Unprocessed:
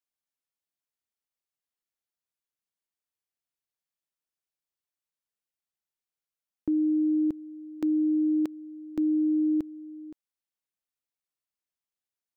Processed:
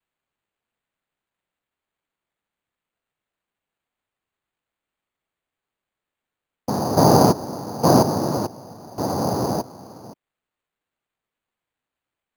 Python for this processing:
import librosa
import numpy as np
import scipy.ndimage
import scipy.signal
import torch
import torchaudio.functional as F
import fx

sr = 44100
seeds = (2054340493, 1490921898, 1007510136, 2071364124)

y = fx.peak_eq(x, sr, hz=320.0, db=10.5, octaves=0.35, at=(6.96, 8.02))
y = fx.noise_vocoder(y, sr, seeds[0], bands=4)
y = np.repeat(y[::8], 8)[:len(y)]
y = y * 10.0 ** (2.0 / 20.0)